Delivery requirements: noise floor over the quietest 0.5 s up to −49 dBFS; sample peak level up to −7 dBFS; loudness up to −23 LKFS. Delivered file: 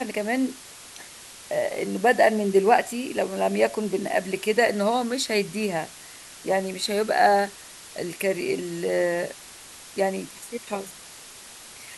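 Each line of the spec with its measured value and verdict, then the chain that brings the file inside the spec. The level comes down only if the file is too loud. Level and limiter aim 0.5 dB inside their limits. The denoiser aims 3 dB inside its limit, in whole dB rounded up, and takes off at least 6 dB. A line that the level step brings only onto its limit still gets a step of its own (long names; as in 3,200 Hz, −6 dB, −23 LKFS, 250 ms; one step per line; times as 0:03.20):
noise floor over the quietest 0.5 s −44 dBFS: out of spec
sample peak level −5.5 dBFS: out of spec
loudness −24.5 LKFS: in spec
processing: broadband denoise 8 dB, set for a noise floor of −44 dBFS
brickwall limiter −7.5 dBFS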